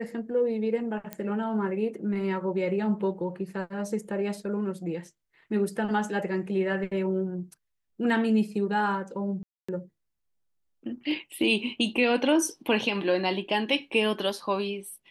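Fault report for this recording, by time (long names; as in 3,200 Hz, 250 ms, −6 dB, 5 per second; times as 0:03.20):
0:01.13: click −18 dBFS
0:09.43–0:09.69: drop-out 255 ms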